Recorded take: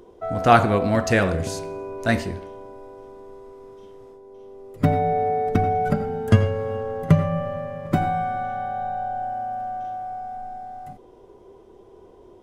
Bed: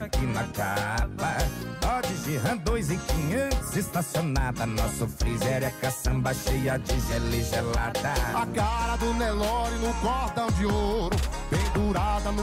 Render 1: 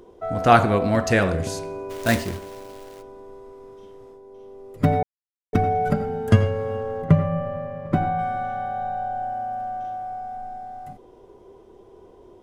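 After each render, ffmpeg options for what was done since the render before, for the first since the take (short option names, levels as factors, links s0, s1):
-filter_complex "[0:a]asplit=3[s0][s1][s2];[s0]afade=t=out:st=1.89:d=0.02[s3];[s1]acrusher=bits=2:mode=log:mix=0:aa=0.000001,afade=t=in:st=1.89:d=0.02,afade=t=out:st=3.01:d=0.02[s4];[s2]afade=t=in:st=3.01:d=0.02[s5];[s3][s4][s5]amix=inputs=3:normalize=0,asettb=1/sr,asplit=3[s6][s7][s8];[s6]atrim=end=7.024[s9];[s7]atrim=start=7.02:end=8.19,asetpts=PTS-STARTPTS,afade=t=in:d=0.004:c=qsin,afade=t=out:st=1.166:d=0.004:c=qsin,lowpass=f=1900:p=1[s10];[s8]atrim=start=8.186[s11];[s9][s10]acrossfade=d=0.004:c1=hsin:c2=qsin[s12];[s12][s11]acrossfade=d=0.004:c1=qsin:c2=hsin,asplit=3[s13][s14][s15];[s13]atrim=end=5.03,asetpts=PTS-STARTPTS,afade=t=out:st=5.026:d=0.004:c=hsin[s16];[s14]atrim=start=5.03:end=5.53,asetpts=PTS-STARTPTS,volume=0[s17];[s15]atrim=start=5.53,asetpts=PTS-STARTPTS,afade=t=in:d=0.004:c=hsin[s18];[s16][s17][s18]concat=n=3:v=0:a=1"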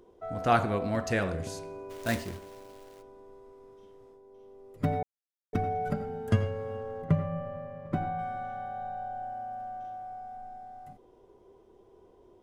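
-af "volume=0.335"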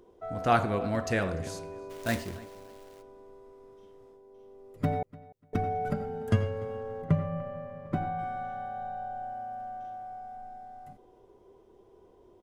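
-filter_complex "[0:a]asplit=2[s0][s1];[s1]adelay=295,lowpass=f=4500:p=1,volume=0.0944,asplit=2[s2][s3];[s3]adelay=295,lowpass=f=4500:p=1,volume=0.2[s4];[s0][s2][s4]amix=inputs=3:normalize=0"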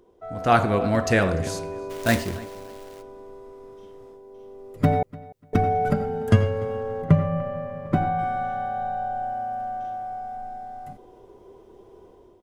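-af "dynaudnorm=f=190:g=5:m=2.82"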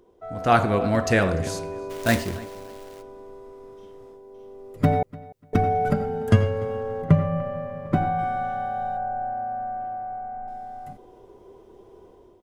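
-filter_complex "[0:a]asettb=1/sr,asplit=3[s0][s1][s2];[s0]atrim=end=8.974[s3];[s1]atrim=start=8.97:end=10.48,asetpts=PTS-STARTPTS,afade=t=in:d=0.004:c=qsin,afade=t=out:st=1.506:d=0.004:c=qsin,lowpass=f=2100:w=0.5412,lowpass=f=2100:w=1.3066[s4];[s2]atrim=start=10.476[s5];[s3][s4]acrossfade=d=0.004:c1=hsin:c2=qsin[s6];[s6][s5]acrossfade=d=0.004:c1=qsin:c2=hsin"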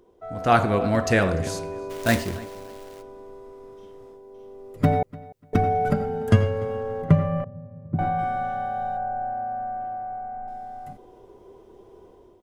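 -filter_complex "[0:a]asettb=1/sr,asplit=3[s0][s1][s2];[s0]atrim=end=7.444[s3];[s1]atrim=start=7.44:end=7.99,asetpts=PTS-STARTPTS,afade=t=in:d=0.004:c=qsin,afade=t=out:st=0.546:d=0.004:c=qsin,bandpass=f=110:t=q:w=1.2[s4];[s2]atrim=start=7.986[s5];[s3][s4]acrossfade=d=0.004:c1=hsin:c2=qsin[s6];[s6][s5]acrossfade=d=0.004:c1=qsin:c2=hsin"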